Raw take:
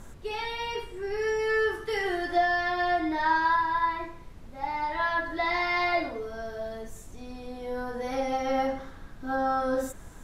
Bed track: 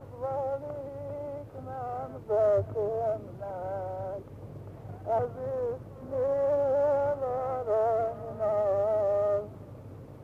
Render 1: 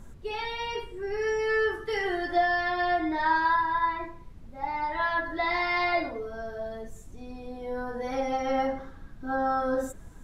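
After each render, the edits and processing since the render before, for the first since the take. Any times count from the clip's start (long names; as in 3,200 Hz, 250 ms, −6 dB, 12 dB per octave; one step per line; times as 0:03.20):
broadband denoise 7 dB, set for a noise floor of −46 dBFS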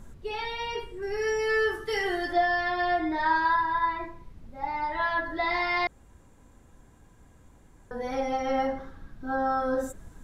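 0:01.02–0:02.33: high-shelf EQ 4,700 Hz +9 dB
0:05.87–0:07.91: fill with room tone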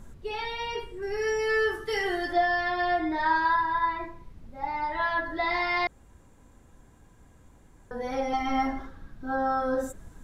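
0:08.33–0:08.87: comb filter 2.9 ms, depth 94%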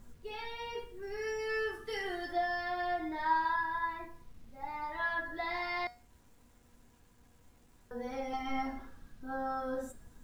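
bit reduction 10 bits
tuned comb filter 240 Hz, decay 0.34 s, harmonics all, mix 70%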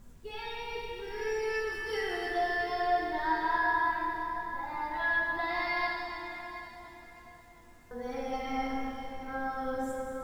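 feedback echo with a low-pass in the loop 721 ms, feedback 37%, low-pass 2,500 Hz, level −12 dB
dense smooth reverb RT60 3.4 s, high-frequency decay 0.95×, DRR −1.5 dB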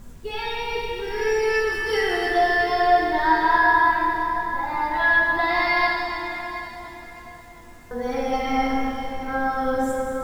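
level +11 dB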